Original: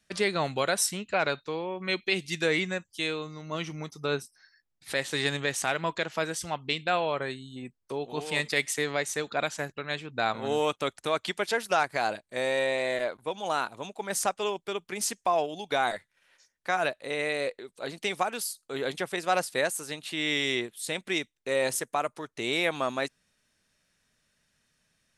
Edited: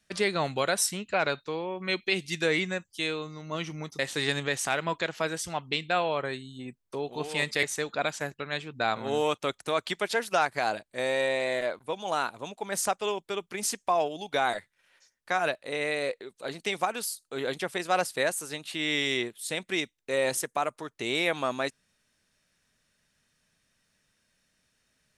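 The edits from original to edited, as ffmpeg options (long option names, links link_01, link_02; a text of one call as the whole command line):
ffmpeg -i in.wav -filter_complex "[0:a]asplit=3[link_01][link_02][link_03];[link_01]atrim=end=3.992[link_04];[link_02]atrim=start=4.958:end=8.602[link_05];[link_03]atrim=start=9.008[link_06];[link_04][link_05]acrossfade=duration=0.004:curve1=hsin:curve2=hsin[link_07];[link_07][link_06]acrossfade=duration=0.004:curve1=hsin:curve2=hsin" out.wav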